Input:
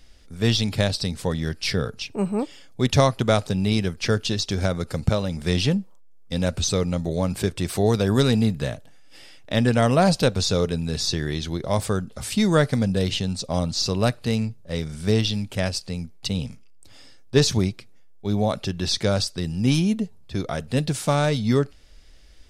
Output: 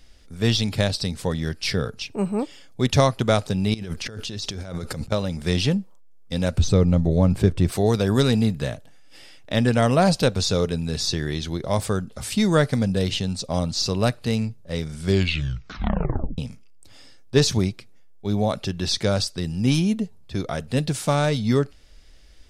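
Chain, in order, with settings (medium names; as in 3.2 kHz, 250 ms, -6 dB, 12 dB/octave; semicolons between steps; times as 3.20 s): 3.74–5.12 s: compressor with a negative ratio -32 dBFS, ratio -1; 6.58–7.72 s: tilt EQ -2.5 dB/octave; 14.99 s: tape stop 1.39 s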